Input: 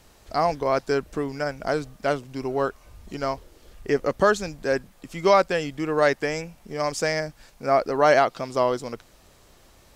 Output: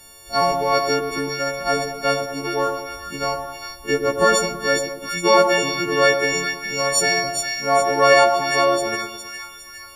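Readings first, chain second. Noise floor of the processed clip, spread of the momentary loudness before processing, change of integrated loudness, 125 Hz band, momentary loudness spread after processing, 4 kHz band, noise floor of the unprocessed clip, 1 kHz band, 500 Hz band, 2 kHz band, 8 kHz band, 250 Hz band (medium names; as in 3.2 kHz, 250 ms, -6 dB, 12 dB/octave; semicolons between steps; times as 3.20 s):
-41 dBFS, 14 LU, +5.0 dB, +0.5 dB, 14 LU, +13.0 dB, -55 dBFS, +5.5 dB, +3.5 dB, +8.0 dB, +14.0 dB, +2.5 dB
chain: partials quantised in pitch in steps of 4 st; two-band feedback delay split 1.3 kHz, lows 106 ms, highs 410 ms, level -5.5 dB; trim +1.5 dB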